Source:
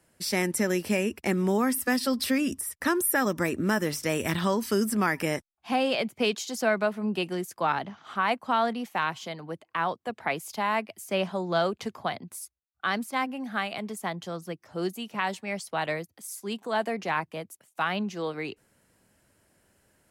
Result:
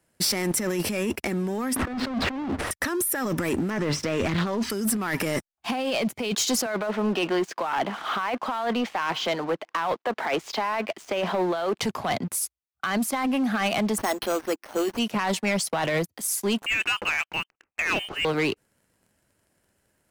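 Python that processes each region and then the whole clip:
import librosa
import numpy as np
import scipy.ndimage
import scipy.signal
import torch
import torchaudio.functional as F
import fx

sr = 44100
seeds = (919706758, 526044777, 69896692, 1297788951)

y = fx.chain(x, sr, fx.halfwave_hold(),
    fx.lowpass(hz=1700.0, slope=12),
    fx.band_squash(depth_pct=100), at=(1.76, 2.71))
y = fx.chain(y, sr, fx.air_absorb(metres=130.0),
    fx.doppler_dist(depth_ms=0.2), at=(3.7, 4.7))
y = fx.chain(y, sr, fx.law_mismatch(coded='mu'),
    fx.bandpass_edges(low_hz=330.0, high_hz=4400.0),
    fx.air_absorb(metres=51.0), at=(6.66, 11.78))
y = fx.chain(y, sr, fx.brickwall_bandpass(low_hz=210.0, high_hz=9100.0),
    fx.resample_bad(factor=6, down='none', up='hold'), at=(13.98, 14.99))
y = fx.chain(y, sr, fx.highpass(hz=730.0, slope=12),
    fx.freq_invert(carrier_hz=3300), at=(16.66, 18.25))
y = fx.over_compress(y, sr, threshold_db=-32.0, ratio=-1.0)
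y = fx.leveller(y, sr, passes=3)
y = y * librosa.db_to_amplitude(-3.0)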